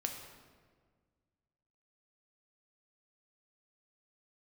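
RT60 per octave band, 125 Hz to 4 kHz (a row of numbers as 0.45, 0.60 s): 2.3, 2.1, 1.8, 1.5, 1.3, 1.0 s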